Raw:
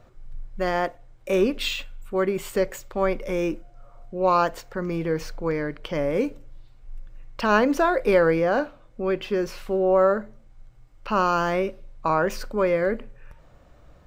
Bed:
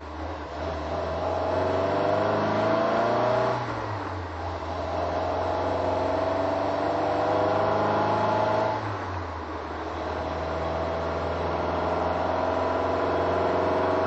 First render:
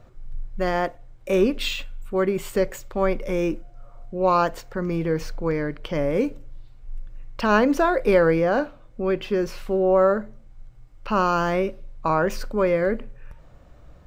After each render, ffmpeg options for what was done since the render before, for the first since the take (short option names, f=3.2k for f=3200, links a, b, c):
-af "lowshelf=f=260:g=4.5"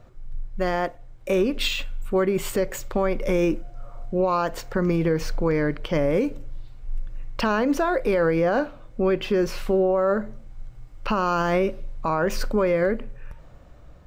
-af "dynaudnorm=f=460:g=7:m=8.5dB,alimiter=limit=-13.5dB:level=0:latency=1:release=203"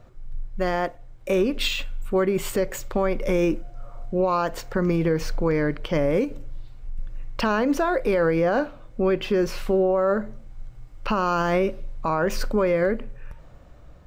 -filter_complex "[0:a]asettb=1/sr,asplit=3[a][b][c];[a]atrim=end=6.244[d];[b]atrim=start=6.24:end=6.99,asetpts=PTS-STARTPTS,afade=t=in:d=0.004:c=qsin,afade=t=out:st=0.746:d=0.004:c=qsin,acompressor=threshold=-26dB:ratio=6:attack=3.2:release=140:knee=1:detection=peak[e];[c]atrim=start=6.986[f];[d][e]acrossfade=d=0.004:c1=hsin:c2=qsin[g];[g][f]acrossfade=d=0.004:c1=qsin:c2=hsin"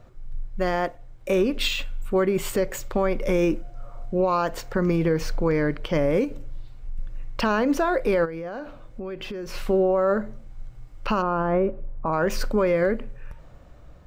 -filter_complex "[0:a]asplit=3[a][b][c];[a]afade=t=out:st=8.24:d=0.02[d];[b]acompressor=threshold=-30dB:ratio=8:attack=3.2:release=140:knee=1:detection=peak,afade=t=in:st=8.24:d=0.02,afade=t=out:st=9.53:d=0.02[e];[c]afade=t=in:st=9.53:d=0.02[f];[d][e][f]amix=inputs=3:normalize=0,asplit=3[g][h][i];[g]afade=t=out:st=11.21:d=0.02[j];[h]lowpass=1.2k,afade=t=in:st=11.21:d=0.02,afade=t=out:st=12.12:d=0.02[k];[i]afade=t=in:st=12.12:d=0.02[l];[j][k][l]amix=inputs=3:normalize=0"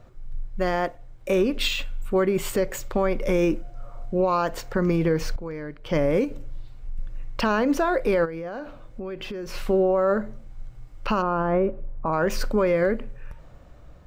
-filter_complex "[0:a]asplit=3[a][b][c];[a]atrim=end=5.362[d];[b]atrim=start=5.358:end=5.862,asetpts=PTS-STARTPTS,volume=-11.5dB[e];[c]atrim=start=5.858[f];[d][e]acrossfade=d=0.004:c1=hsin:c2=hsin[g];[g][f]acrossfade=d=0.004:c1=hsin:c2=hsin"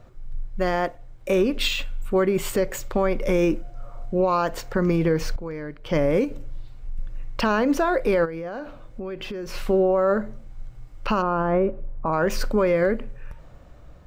-af "volume=1dB"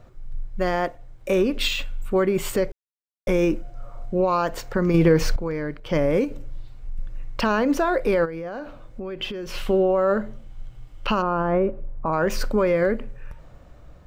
-filter_complex "[0:a]asettb=1/sr,asplit=3[a][b][c];[a]atrim=end=4.944[d];[b]atrim=start=4.94:end=5.8,asetpts=PTS-STARTPTS,afade=t=in:d=0.004:c=qsin,afade=t=out:st=0.856:d=0.004:c=qsin,acontrast=27[e];[c]atrim=start=5.796[f];[d][e]acrossfade=d=0.004:c1=hsin:c2=qsin[g];[g][f]acrossfade=d=0.004:c1=qsin:c2=hsin,asettb=1/sr,asplit=3[h][i][j];[h]atrim=end=9.194[k];[i]atrim=start=9.19:end=11.15,asetpts=PTS-STARTPTS,afade=t=in:d=0.004:c=qsin,afade=t=out:st=1.956:d=0.004:c=qsin,equalizer=f=3.1k:t=o:w=0.38:g=8.5[l];[j]atrim=start=11.146[m];[k][l]acrossfade=d=0.004:c1=hsin:c2=qsin[n];[n][m]acrossfade=d=0.004:c1=qsin:c2=hsin,asplit=3[o][p][q];[o]atrim=end=2.72,asetpts=PTS-STARTPTS,afade=t=out:st=2.716:d=0.004:c=hsin[r];[p]atrim=start=2.72:end=3.27,asetpts=PTS-STARTPTS,volume=0[s];[q]atrim=start=3.27,asetpts=PTS-STARTPTS,afade=t=in:d=0.004:c=hsin[t];[r][s][t]concat=n=3:v=0:a=1"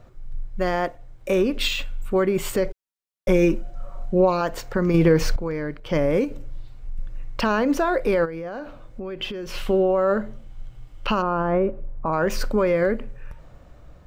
-filter_complex "[0:a]asettb=1/sr,asplit=3[a][b][c];[a]atrim=end=2.644[d];[b]atrim=start=2.64:end=4.41,asetpts=PTS-STARTPTS,afade=t=in:d=0.004:c=qsin,afade=t=out:st=1.766:d=0.004:c=qsin,aecho=1:1:5.3:0.58,atrim=end_sample=78057[e];[c]atrim=start=4.406[f];[d][e]acrossfade=d=0.004:c1=hsin:c2=qsin[g];[g][f]acrossfade=d=0.004:c1=qsin:c2=hsin"